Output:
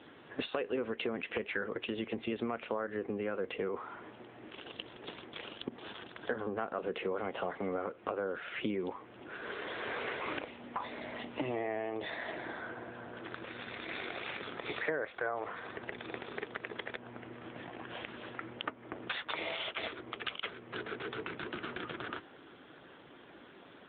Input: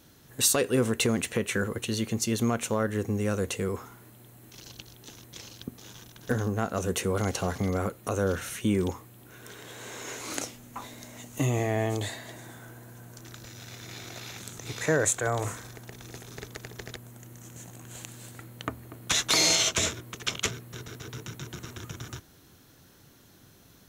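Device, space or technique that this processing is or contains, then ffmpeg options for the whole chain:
voicemail: -af "highpass=340,lowpass=3200,acompressor=threshold=-42dB:ratio=6,volume=9.5dB" -ar 8000 -c:a libopencore_amrnb -b:a 7950

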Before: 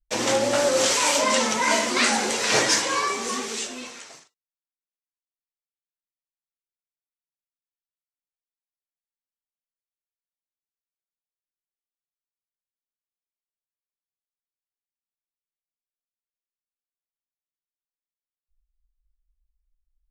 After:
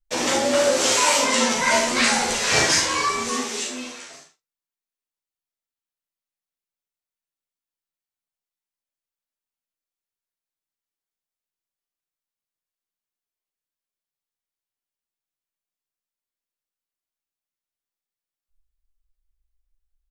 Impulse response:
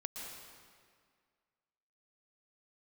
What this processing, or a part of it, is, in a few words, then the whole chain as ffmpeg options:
slapback doubling: -filter_complex "[0:a]asplit=3[link_01][link_02][link_03];[link_02]adelay=39,volume=-5dB[link_04];[link_03]adelay=68,volume=-8dB[link_05];[link_01][link_04][link_05]amix=inputs=3:normalize=0,asplit=3[link_06][link_07][link_08];[link_06]afade=type=out:start_time=1.55:duration=0.02[link_09];[link_07]asubboost=boost=6.5:cutoff=140,afade=type=in:start_time=1.55:duration=0.02,afade=type=out:start_time=3.3:duration=0.02[link_10];[link_08]afade=type=in:start_time=3.3:duration=0.02[link_11];[link_09][link_10][link_11]amix=inputs=3:normalize=0,aecho=1:1:12|54:0.631|0.211,volume=-1dB"

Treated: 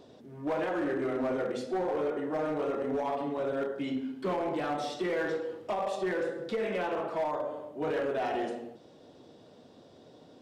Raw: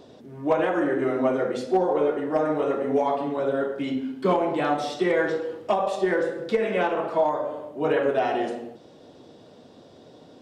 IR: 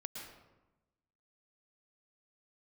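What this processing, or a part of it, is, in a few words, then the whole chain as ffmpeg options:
limiter into clipper: -af "alimiter=limit=-17dB:level=0:latency=1:release=16,asoftclip=type=hard:threshold=-20.5dB,volume=-5.5dB"

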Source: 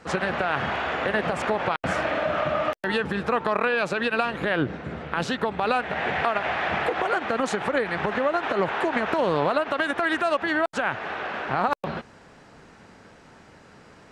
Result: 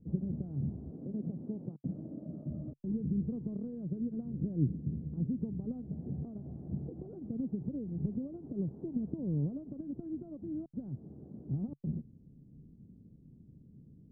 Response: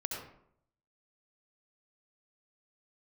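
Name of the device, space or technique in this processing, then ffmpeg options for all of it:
the neighbour's flat through the wall: -filter_complex "[0:a]asettb=1/sr,asplit=3[link_01][link_02][link_03];[link_01]atrim=end=0.914[link_04];[link_02]atrim=start=0.91:end=2.5,asetpts=PTS-STARTPTS,afade=type=in:duration=0.004:curve=qsin,afade=type=out:start_time=1.586:duration=0.004:curve=qsin,highpass=180[link_05];[link_03]atrim=start=2.496[link_06];[link_04][link_05]acrossfade=duration=0.004:curve1=hsin:curve2=qsin[link_07];[link_07][link_06]acrossfade=duration=0.004:curve1=qsin:curve2=hsin,lowpass=frequency=260:width=0.5412,lowpass=frequency=260:width=1.3066,equalizer=frequency=140:width_type=o:width=0.4:gain=5.5,volume=-2dB"

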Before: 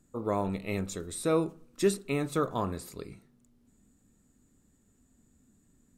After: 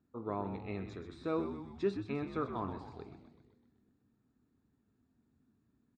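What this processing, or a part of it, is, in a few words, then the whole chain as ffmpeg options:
frequency-shifting delay pedal into a guitar cabinet: -filter_complex "[0:a]asplit=8[link_01][link_02][link_03][link_04][link_05][link_06][link_07][link_08];[link_02]adelay=127,afreqshift=-86,volume=-9dB[link_09];[link_03]adelay=254,afreqshift=-172,volume=-13.4dB[link_10];[link_04]adelay=381,afreqshift=-258,volume=-17.9dB[link_11];[link_05]adelay=508,afreqshift=-344,volume=-22.3dB[link_12];[link_06]adelay=635,afreqshift=-430,volume=-26.7dB[link_13];[link_07]adelay=762,afreqshift=-516,volume=-31.2dB[link_14];[link_08]adelay=889,afreqshift=-602,volume=-35.6dB[link_15];[link_01][link_09][link_10][link_11][link_12][link_13][link_14][link_15]amix=inputs=8:normalize=0,highpass=87,equalizer=frequency=170:width_type=q:width=4:gain=-6,equalizer=frequency=550:width_type=q:width=4:gain=-7,equalizer=frequency=2000:width_type=q:width=4:gain=-6,equalizer=frequency=3100:width_type=q:width=4:gain=-10,lowpass=frequency=3800:width=0.5412,lowpass=frequency=3800:width=1.3066,volume=-6dB"

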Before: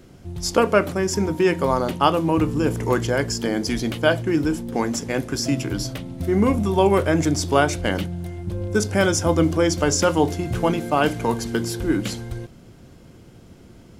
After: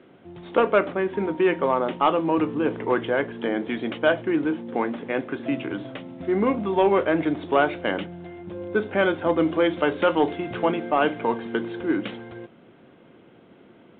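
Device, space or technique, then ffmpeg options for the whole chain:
telephone: -filter_complex "[0:a]asettb=1/sr,asplit=3[link_01][link_02][link_03];[link_01]atrim=end=9.464[link_04];[link_02]atrim=start=9.46:end=10.65,asetpts=PTS-STARTPTS,afade=type=in:duration=0.004:curve=qsin,afade=type=out:start_time=1.186:duration=0.004:curve=qsin,highshelf=frequency=3200:gain=7.5[link_05];[link_03]atrim=start=10.646[link_06];[link_04][link_05]acrossfade=duration=0.004:curve1=hsin:curve2=qsin[link_07];[link_07][link_06]acrossfade=duration=0.004:curve1=qsin:curve2=hsin,highpass=270,lowpass=3100,asoftclip=type=tanh:threshold=-8dB" -ar 8000 -c:a pcm_alaw

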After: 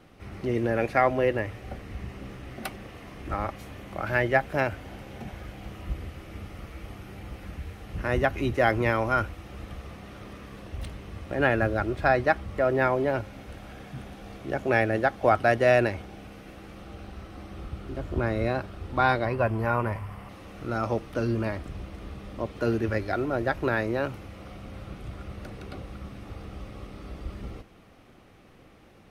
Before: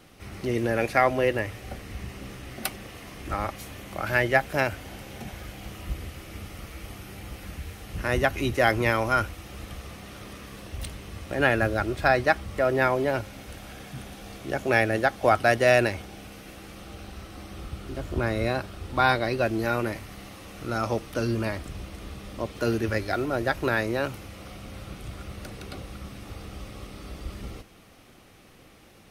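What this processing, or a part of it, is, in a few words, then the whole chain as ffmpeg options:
through cloth: -filter_complex "[0:a]asettb=1/sr,asplit=3[link_01][link_02][link_03];[link_01]atrim=end=19.254[link_04];[link_02]atrim=start=19.25:end=20.29,asetpts=PTS-STARTPTS,afade=type=in:duration=0.004:curve=qsin,afade=type=out:start_time=1.036:duration=0.004:curve=qsin,equalizer=frequency=100:width_type=o:width=0.33:gain=10,equalizer=frequency=315:width_type=o:width=0.33:gain=-10,equalizer=frequency=1000:width_type=o:width=0.33:gain=12,equalizer=frequency=4000:width_type=o:width=0.33:gain=-11,equalizer=frequency=6300:width_type=o:width=0.33:gain=-9[link_05];[link_03]atrim=start=20.286[link_06];[link_04][link_05]acrossfade=duration=0.004:curve1=hsin:curve2=qsin[link_07];[link_07][link_06]acrossfade=duration=0.004:curve1=qsin:curve2=hsin,highshelf=frequency=3500:gain=-12.5"

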